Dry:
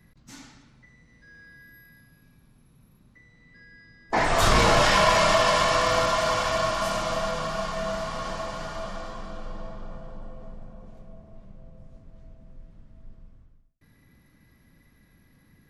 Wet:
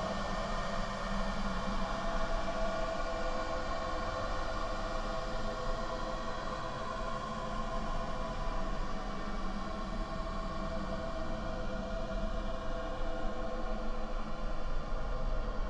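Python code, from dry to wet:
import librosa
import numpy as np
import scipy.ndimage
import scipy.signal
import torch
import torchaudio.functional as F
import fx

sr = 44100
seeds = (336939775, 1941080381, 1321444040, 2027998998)

y = fx.env_lowpass_down(x, sr, base_hz=2000.0, full_db=-21.5)
y = fx.paulstretch(y, sr, seeds[0], factor=26.0, window_s=0.1, from_s=8.88)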